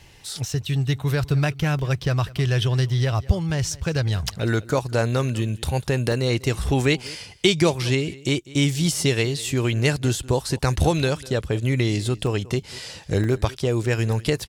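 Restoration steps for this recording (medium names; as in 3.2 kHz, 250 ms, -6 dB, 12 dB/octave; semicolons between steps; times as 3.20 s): interpolate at 1.79/6.12/7.07/8.29/12.27/13.24 s, 1.2 ms; inverse comb 197 ms -20.5 dB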